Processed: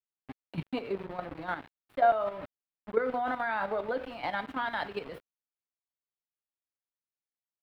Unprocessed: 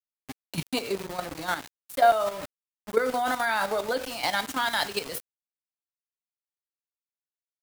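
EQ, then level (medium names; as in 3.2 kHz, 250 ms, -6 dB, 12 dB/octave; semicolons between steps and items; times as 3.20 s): distance through air 490 m; -2.5 dB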